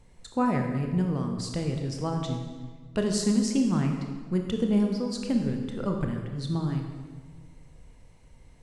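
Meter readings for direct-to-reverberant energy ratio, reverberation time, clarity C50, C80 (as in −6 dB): 2.5 dB, 1.5 s, 4.5 dB, 6.0 dB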